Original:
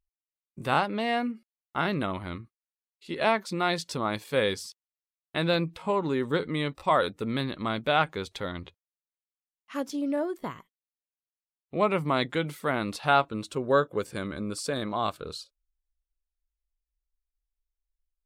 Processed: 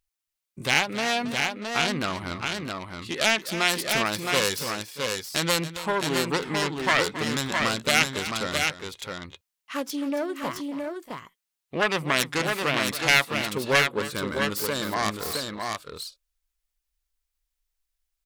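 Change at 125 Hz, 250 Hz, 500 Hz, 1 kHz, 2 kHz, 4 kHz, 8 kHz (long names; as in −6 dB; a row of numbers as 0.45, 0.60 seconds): +0.5, +0.5, 0.0, 0.0, +8.5, +9.5, +14.5 decibels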